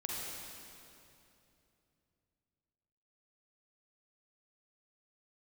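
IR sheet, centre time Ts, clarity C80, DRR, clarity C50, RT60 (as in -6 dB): 0.165 s, -1.0 dB, -4.0 dB, -3.0 dB, 2.8 s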